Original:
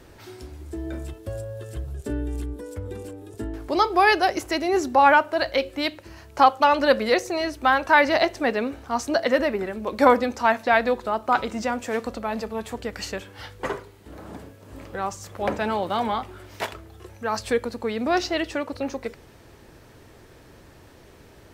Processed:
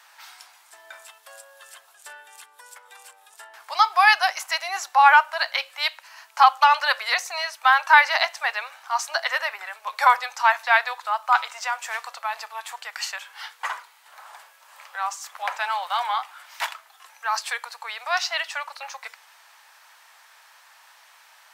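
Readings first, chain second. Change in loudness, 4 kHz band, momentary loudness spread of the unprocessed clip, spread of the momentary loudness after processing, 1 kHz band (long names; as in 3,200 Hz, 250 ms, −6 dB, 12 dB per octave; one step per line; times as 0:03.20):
+1.5 dB, +4.0 dB, 18 LU, 18 LU, +2.0 dB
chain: Butterworth high-pass 830 Hz 36 dB per octave
level +4 dB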